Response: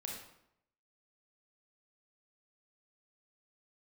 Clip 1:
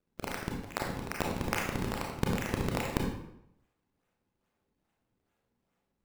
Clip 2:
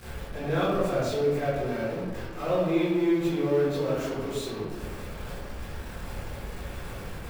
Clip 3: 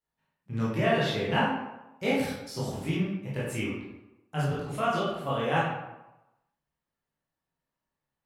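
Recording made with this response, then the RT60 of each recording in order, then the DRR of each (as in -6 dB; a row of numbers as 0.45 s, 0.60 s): 1; 0.75 s, 1.3 s, 1.0 s; -1.0 dB, -13.5 dB, -8.5 dB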